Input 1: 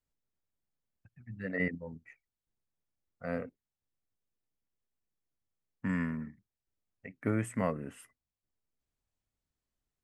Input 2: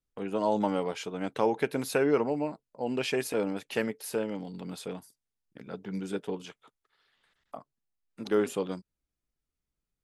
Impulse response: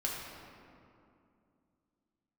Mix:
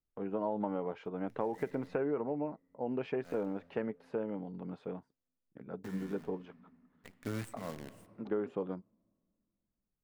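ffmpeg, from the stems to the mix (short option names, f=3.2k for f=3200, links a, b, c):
-filter_complex "[0:a]acrusher=bits=7:dc=4:mix=0:aa=0.000001,volume=-8dB,asplit=2[a][b];[b]volume=-18dB[c];[1:a]lowpass=1.3k,volume=-3dB,asplit=2[d][e];[e]apad=whole_len=442519[f];[a][f]sidechaincompress=threshold=-48dB:ratio=8:attack=10:release=216[g];[2:a]atrim=start_sample=2205[h];[c][h]afir=irnorm=-1:irlink=0[i];[g][d][i]amix=inputs=3:normalize=0,acompressor=threshold=-30dB:ratio=6"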